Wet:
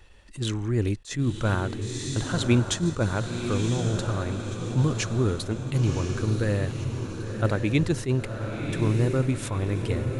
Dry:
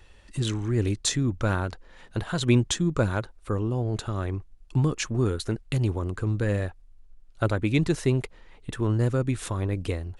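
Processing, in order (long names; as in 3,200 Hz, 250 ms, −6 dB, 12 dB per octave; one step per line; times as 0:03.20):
feedback delay with all-pass diffusion 1,038 ms, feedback 50%, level −6 dB
level that may rise only so fast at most 250 dB per second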